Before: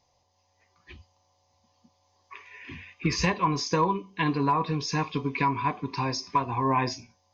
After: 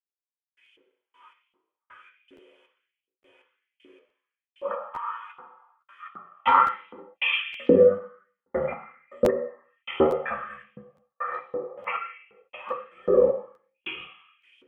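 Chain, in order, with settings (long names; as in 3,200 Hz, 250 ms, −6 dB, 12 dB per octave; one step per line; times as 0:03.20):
parametric band 340 Hz +6 dB 0.3 octaves
in parallel at 0 dB: downward compressor, threshold −36 dBFS, peak gain reduction 16.5 dB
on the sum: wrong playback speed 15 ips tape played at 7.5 ips
gate pattern "...x..x...x.xx" 79 BPM −60 dB
on a send at −1 dB: convolution reverb RT60 0.80 s, pre-delay 3 ms
on the sum: auto-filter high-pass saw up 1.3 Hz 300–3,100 Hz
regular buffer underruns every 0.86 s, samples 512, repeat, from 0:00.64
level +2.5 dB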